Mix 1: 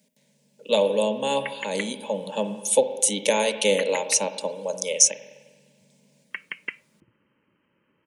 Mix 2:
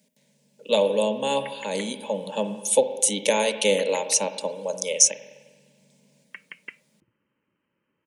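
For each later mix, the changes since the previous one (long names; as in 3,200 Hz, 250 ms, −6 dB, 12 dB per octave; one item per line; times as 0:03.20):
background −7.5 dB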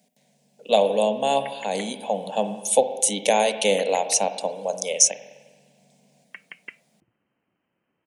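master: remove Butterworth band-reject 720 Hz, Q 3.5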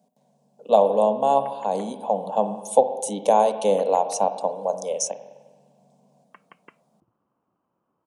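master: add high shelf with overshoot 1,500 Hz −10 dB, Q 3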